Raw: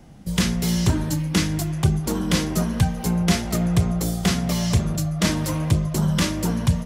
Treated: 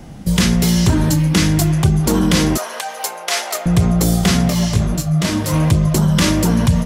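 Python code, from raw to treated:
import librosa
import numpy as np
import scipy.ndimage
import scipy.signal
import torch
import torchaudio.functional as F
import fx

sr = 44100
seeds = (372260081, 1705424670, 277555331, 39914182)

p1 = fx.over_compress(x, sr, threshold_db=-25.0, ratio=-1.0)
p2 = x + (p1 * 10.0 ** (-0.5 / 20.0))
p3 = fx.highpass(p2, sr, hz=570.0, slope=24, at=(2.57, 3.66))
p4 = fx.detune_double(p3, sr, cents=29, at=(4.49, 5.52), fade=0.02)
y = p4 * 10.0 ** (3.5 / 20.0)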